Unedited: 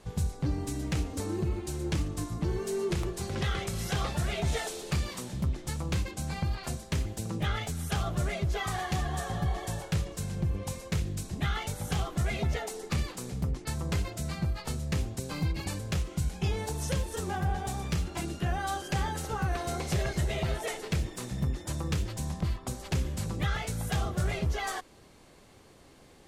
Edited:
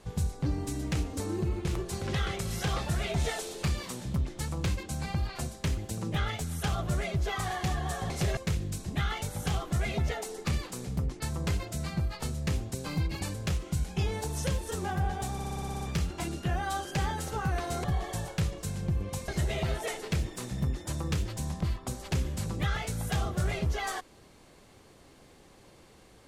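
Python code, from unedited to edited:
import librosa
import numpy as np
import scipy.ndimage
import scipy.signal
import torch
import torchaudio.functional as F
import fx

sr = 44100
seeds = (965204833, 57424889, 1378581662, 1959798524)

y = fx.edit(x, sr, fx.cut(start_s=1.65, length_s=1.28),
    fx.swap(start_s=9.38, length_s=1.44, other_s=19.81, other_length_s=0.27),
    fx.stutter(start_s=17.78, slice_s=0.06, count=9), tone=tone)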